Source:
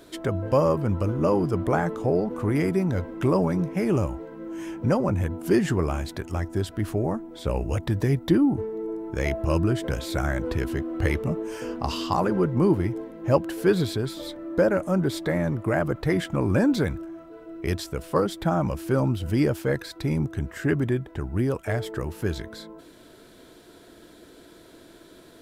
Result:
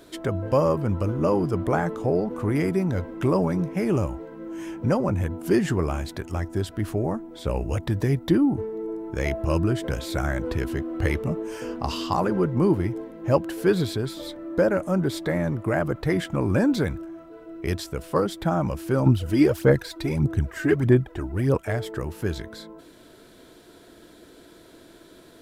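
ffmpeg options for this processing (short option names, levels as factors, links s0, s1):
-filter_complex "[0:a]asettb=1/sr,asplit=3[s0][s1][s2];[s0]atrim=end=19.064[s3];[s1]atrim=start=19.06:end=21.58,asetpts=PTS-STARTPTS,afade=t=in:d=0.004:c=qsin,afade=t=out:st=2.516:d=0.004:c=qsin,aphaser=in_gain=1:out_gain=1:delay=3.3:decay=0.61:speed=1.6:type=sinusoidal[s4];[s2]atrim=start=21.576[s5];[s3][s4]acrossfade=d=0.004:c1=hsin:c2=qsin[s6];[s6][s5]acrossfade=d=0.004:c1=qsin:c2=hsin"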